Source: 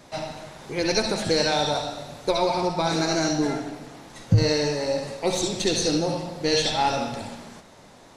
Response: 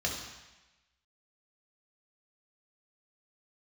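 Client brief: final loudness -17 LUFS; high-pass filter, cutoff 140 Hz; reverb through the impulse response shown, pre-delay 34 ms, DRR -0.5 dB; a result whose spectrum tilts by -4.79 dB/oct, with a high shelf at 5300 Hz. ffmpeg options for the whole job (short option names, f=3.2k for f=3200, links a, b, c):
-filter_complex "[0:a]highpass=140,highshelf=f=5.3k:g=-7.5,asplit=2[a][b];[1:a]atrim=start_sample=2205,adelay=34[c];[b][c]afir=irnorm=-1:irlink=0,volume=-6dB[d];[a][d]amix=inputs=2:normalize=0,volume=5dB"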